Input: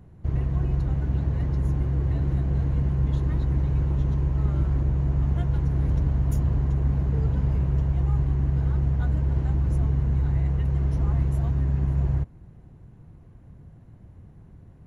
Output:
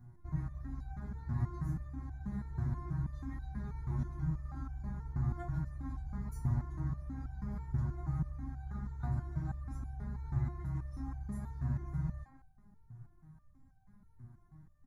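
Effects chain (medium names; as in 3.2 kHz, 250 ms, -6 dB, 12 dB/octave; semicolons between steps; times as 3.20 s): static phaser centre 1.2 kHz, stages 4; speakerphone echo 170 ms, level -8 dB; resonator arpeggio 6.2 Hz 120–780 Hz; trim +6 dB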